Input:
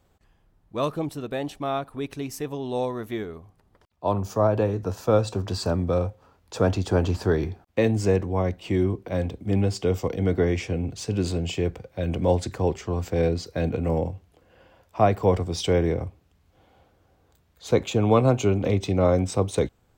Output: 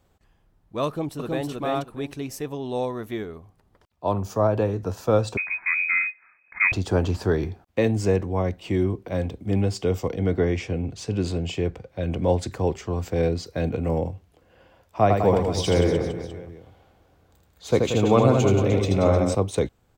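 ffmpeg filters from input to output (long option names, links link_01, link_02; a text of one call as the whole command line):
ffmpeg -i in.wav -filter_complex "[0:a]asplit=2[link_01][link_02];[link_02]afade=type=in:start_time=0.87:duration=0.01,afade=type=out:start_time=1.5:duration=0.01,aecho=0:1:320|640|960:0.891251|0.17825|0.03565[link_03];[link_01][link_03]amix=inputs=2:normalize=0,asettb=1/sr,asplit=3[link_04][link_05][link_06];[link_04]atrim=end=5.374[link_07];[link_05]atrim=start=5.37:end=6.72,asetpts=PTS-STARTPTS,afade=type=in:duration=0.004:curve=qsin,afade=type=out:start_time=1.346:duration=0.004:curve=qsin,lowpass=frequency=2200:width_type=q:width=0.5098,lowpass=frequency=2200:width_type=q:width=0.6013,lowpass=frequency=2200:width_type=q:width=0.9,lowpass=frequency=2200:width_type=q:width=2.563,afreqshift=-2600[link_08];[link_06]atrim=start=6.716[link_09];[link_07][link_08]acrossfade=duration=0.004:curve1=hsin:curve2=qsin[link_10];[link_10][link_09]acrossfade=duration=0.004:curve1=qsin:curve2=hsin,asettb=1/sr,asplit=3[link_11][link_12][link_13];[link_11]atrim=end=10.114[link_14];[link_12]atrim=start=10.11:end=12.39,asetpts=PTS-STARTPTS,afade=type=in:duration=0.004:curve=qsin,afade=type=out:start_time=2.276:duration=0.004:curve=qsin,highshelf=frequency=8800:gain=-8.5[link_15];[link_13]atrim=start=12.386[link_16];[link_14][link_15]acrossfade=duration=0.004:curve1=hsin:curve2=qsin[link_17];[link_17][link_16]acrossfade=duration=0.004:curve1=qsin:curve2=hsin,asettb=1/sr,asplit=3[link_18][link_19][link_20];[link_18]atrim=end=15.024[link_21];[link_19]atrim=start=15.02:end=19.35,asetpts=PTS-STARTPTS,afade=type=in:duration=0.004:curve=qsin,afade=type=out:start_time=4.326:duration=0.004:curve=qsin,aecho=1:1:80|180|305|461.2|656.6:0.631|0.398|0.251|0.158|0.1,atrim=end_sample=190953[link_22];[link_20]atrim=start=19.346[link_23];[link_21][link_22]acrossfade=duration=0.004:curve1=hsin:curve2=qsin[link_24];[link_24][link_23]acrossfade=duration=0.004:curve1=qsin:curve2=hsin" out.wav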